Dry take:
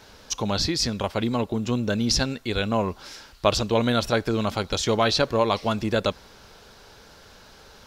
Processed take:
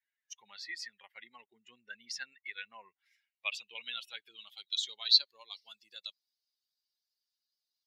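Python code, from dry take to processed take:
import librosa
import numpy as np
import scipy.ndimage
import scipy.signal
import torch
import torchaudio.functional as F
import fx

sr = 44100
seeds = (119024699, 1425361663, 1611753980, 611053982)

y = fx.bin_expand(x, sr, power=2.0)
y = fx.riaa(y, sr, side='recording')
y = fx.filter_sweep_bandpass(y, sr, from_hz=1900.0, to_hz=4800.0, start_s=2.87, end_s=5.48, q=6.2)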